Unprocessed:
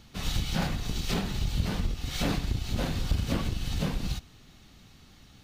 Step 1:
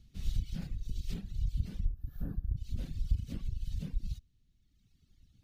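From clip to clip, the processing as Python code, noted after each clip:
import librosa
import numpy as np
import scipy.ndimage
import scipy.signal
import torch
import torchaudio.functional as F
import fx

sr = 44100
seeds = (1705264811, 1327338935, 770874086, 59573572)

y = fx.tone_stack(x, sr, knobs='10-0-1')
y = fx.dereverb_blind(y, sr, rt60_s=1.8)
y = fx.spec_box(y, sr, start_s=1.85, length_s=0.72, low_hz=1800.0, high_hz=11000.0, gain_db=-24)
y = y * 10.0 ** (5.5 / 20.0)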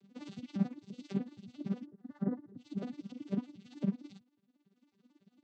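y = fx.vocoder_arp(x, sr, chord='major triad', root=55, every_ms=91)
y = fx.peak_eq(y, sr, hz=810.0, db=11.5, octaves=2.2)
y = y * (1.0 - 0.74 / 2.0 + 0.74 / 2.0 * np.cos(2.0 * np.pi * 18.0 * (np.arange(len(y)) / sr)))
y = y * 10.0 ** (7.5 / 20.0)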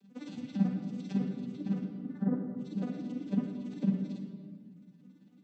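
y = fx.room_shoebox(x, sr, seeds[0], volume_m3=2700.0, walls='mixed', distance_m=2.0)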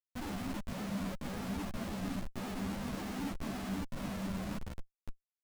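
y = fx.over_compress(x, sr, threshold_db=-37.0, ratio=-0.5)
y = fx.schmitt(y, sr, flips_db=-43.0)
y = fx.ensemble(y, sr)
y = y * 10.0 ** (3.5 / 20.0)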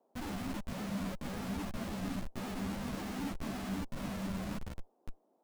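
y = fx.dmg_noise_band(x, sr, seeds[1], low_hz=220.0, high_hz=850.0, level_db=-74.0)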